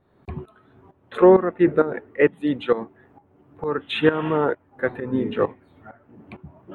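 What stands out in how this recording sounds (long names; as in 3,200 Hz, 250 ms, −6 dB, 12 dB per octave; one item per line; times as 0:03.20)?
tremolo saw up 2.2 Hz, depth 80%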